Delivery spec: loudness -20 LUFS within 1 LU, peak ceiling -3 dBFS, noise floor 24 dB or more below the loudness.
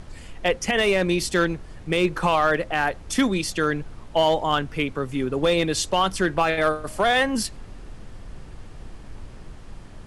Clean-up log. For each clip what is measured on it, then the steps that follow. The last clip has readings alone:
clipped samples 0.5%; clipping level -12.0 dBFS; noise floor -42 dBFS; noise floor target -47 dBFS; loudness -23.0 LUFS; peak level -12.0 dBFS; loudness target -20.0 LUFS
-> clip repair -12 dBFS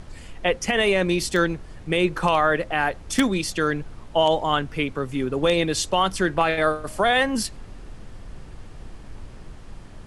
clipped samples 0.0%; noise floor -42 dBFS; noise floor target -47 dBFS
-> noise print and reduce 6 dB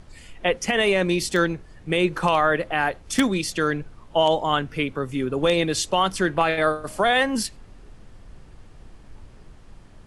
noise floor -48 dBFS; loudness -22.5 LUFS; peak level -3.0 dBFS; loudness target -20.0 LUFS
-> trim +2.5 dB; peak limiter -3 dBFS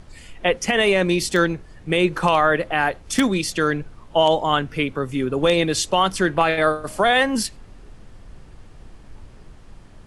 loudness -20.0 LUFS; peak level -3.0 dBFS; noise floor -45 dBFS

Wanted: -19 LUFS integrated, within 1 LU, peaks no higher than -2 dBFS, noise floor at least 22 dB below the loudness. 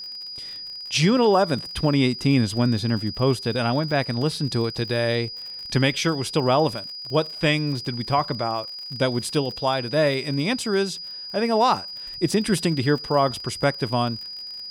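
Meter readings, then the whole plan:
tick rate 45 per s; steady tone 4.9 kHz; tone level -33 dBFS; loudness -23.0 LUFS; peak level -8.0 dBFS; loudness target -19.0 LUFS
-> de-click; band-stop 4.9 kHz, Q 30; trim +4 dB

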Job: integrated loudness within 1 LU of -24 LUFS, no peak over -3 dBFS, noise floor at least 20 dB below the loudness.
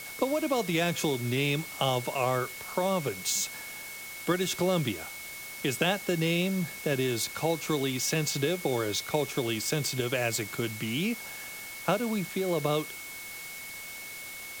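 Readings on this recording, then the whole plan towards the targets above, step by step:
steady tone 2.2 kHz; tone level -42 dBFS; noise floor -42 dBFS; noise floor target -50 dBFS; loudness -30.0 LUFS; peak level -12.5 dBFS; loudness target -24.0 LUFS
-> band-stop 2.2 kHz, Q 30; noise print and reduce 8 dB; trim +6 dB

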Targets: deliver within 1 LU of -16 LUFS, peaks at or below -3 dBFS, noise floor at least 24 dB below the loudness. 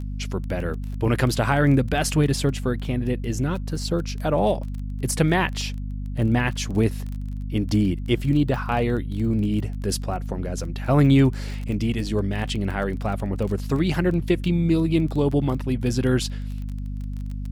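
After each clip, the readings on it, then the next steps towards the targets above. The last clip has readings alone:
tick rate 22 per s; hum 50 Hz; highest harmonic 250 Hz; hum level -27 dBFS; loudness -24.0 LUFS; peak level -6.0 dBFS; loudness target -16.0 LUFS
-> de-click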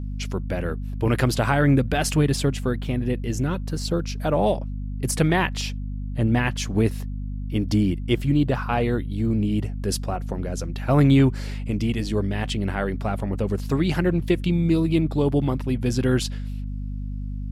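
tick rate 0 per s; hum 50 Hz; highest harmonic 250 Hz; hum level -27 dBFS
-> hum notches 50/100/150/200/250 Hz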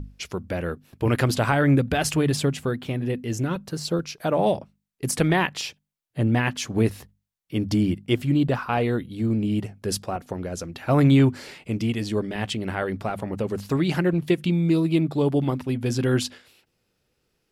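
hum not found; loudness -24.5 LUFS; peak level -6.5 dBFS; loudness target -16.0 LUFS
-> trim +8.5 dB; peak limiter -3 dBFS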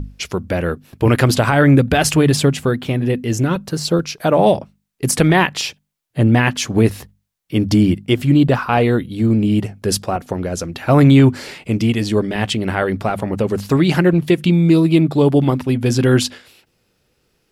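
loudness -16.0 LUFS; peak level -3.0 dBFS; noise floor -66 dBFS

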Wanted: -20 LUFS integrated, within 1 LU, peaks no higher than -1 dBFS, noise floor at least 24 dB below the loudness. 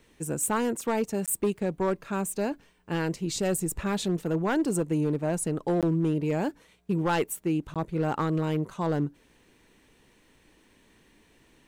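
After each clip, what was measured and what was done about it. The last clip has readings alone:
clipped samples 1.6%; clipping level -19.5 dBFS; dropouts 3; longest dropout 17 ms; loudness -28.5 LUFS; peak level -19.5 dBFS; loudness target -20.0 LUFS
-> clip repair -19.5 dBFS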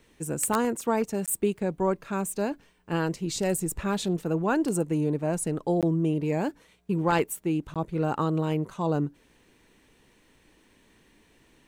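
clipped samples 0.0%; dropouts 3; longest dropout 17 ms
-> interpolate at 1.26/5.81/7.74 s, 17 ms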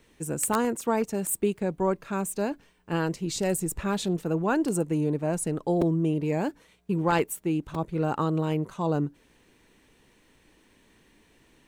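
dropouts 0; loudness -28.0 LUFS; peak level -10.5 dBFS; loudness target -20.0 LUFS
-> trim +8 dB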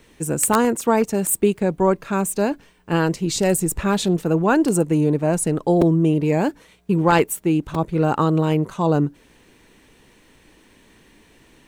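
loudness -20.0 LUFS; peak level -2.5 dBFS; noise floor -54 dBFS

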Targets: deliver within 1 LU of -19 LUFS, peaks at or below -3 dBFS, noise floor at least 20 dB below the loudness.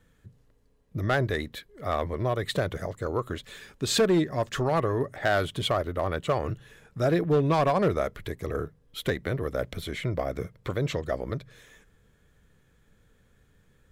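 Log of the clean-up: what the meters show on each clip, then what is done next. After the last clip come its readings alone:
clipped samples 0.6%; clipping level -17.0 dBFS; loudness -28.5 LUFS; peak level -17.0 dBFS; loudness target -19.0 LUFS
-> clip repair -17 dBFS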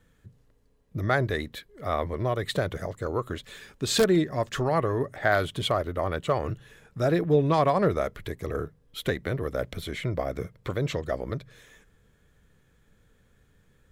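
clipped samples 0.0%; loudness -28.0 LUFS; peak level -8.0 dBFS; loudness target -19.0 LUFS
-> trim +9 dB; peak limiter -3 dBFS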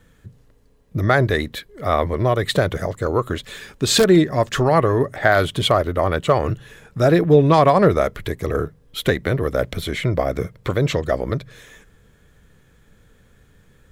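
loudness -19.0 LUFS; peak level -3.0 dBFS; noise floor -55 dBFS

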